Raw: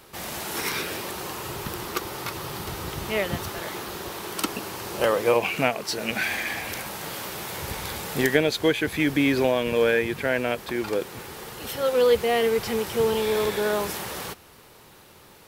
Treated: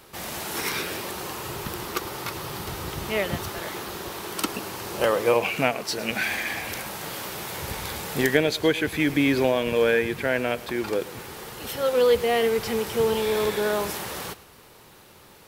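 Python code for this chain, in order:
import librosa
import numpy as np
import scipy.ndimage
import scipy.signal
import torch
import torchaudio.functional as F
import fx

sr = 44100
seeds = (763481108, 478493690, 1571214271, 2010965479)

y = x + fx.echo_single(x, sr, ms=108, db=-18.5, dry=0)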